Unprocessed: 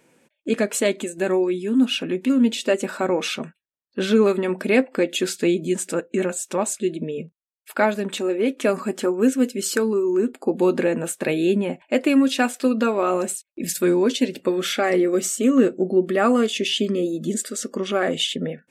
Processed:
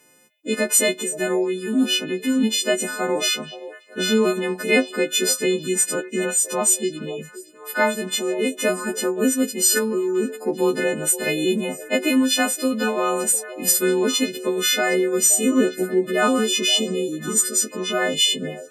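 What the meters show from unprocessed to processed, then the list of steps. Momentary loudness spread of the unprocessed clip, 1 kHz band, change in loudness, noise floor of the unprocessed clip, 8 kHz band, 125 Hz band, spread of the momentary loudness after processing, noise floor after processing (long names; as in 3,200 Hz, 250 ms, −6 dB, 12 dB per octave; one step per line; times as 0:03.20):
8 LU, −0.5 dB, +1.5 dB, −77 dBFS, +10.0 dB, −2.5 dB, 7 LU, −43 dBFS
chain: every partial snapped to a pitch grid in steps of 3 semitones
echo through a band-pass that steps 523 ms, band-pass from 530 Hz, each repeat 1.4 octaves, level −11.5 dB
level −1.5 dB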